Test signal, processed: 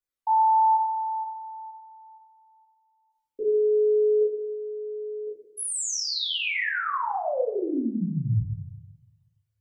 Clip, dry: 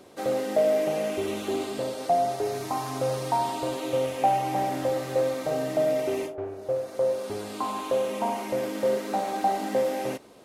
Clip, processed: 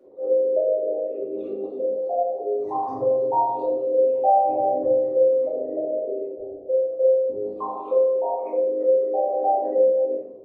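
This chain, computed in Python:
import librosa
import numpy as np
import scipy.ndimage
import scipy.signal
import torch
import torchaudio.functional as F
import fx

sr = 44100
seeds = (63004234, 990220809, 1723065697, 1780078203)

y = fx.envelope_sharpen(x, sr, power=3.0)
y = fx.room_shoebox(y, sr, seeds[0], volume_m3=160.0, walls='mixed', distance_m=2.4)
y = y * 10.0 ** (-7.0 / 20.0)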